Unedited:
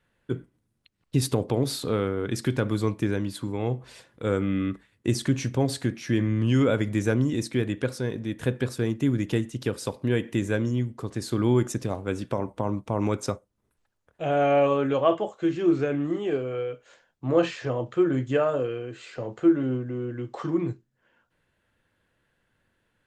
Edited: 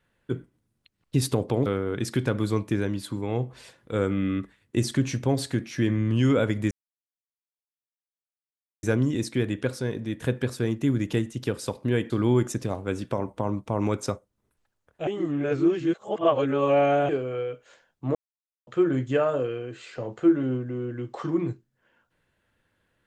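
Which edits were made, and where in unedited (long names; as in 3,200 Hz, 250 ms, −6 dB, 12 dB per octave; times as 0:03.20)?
0:01.66–0:01.97: remove
0:07.02: splice in silence 2.12 s
0:10.29–0:11.30: remove
0:14.27–0:16.29: reverse
0:17.35–0:17.87: silence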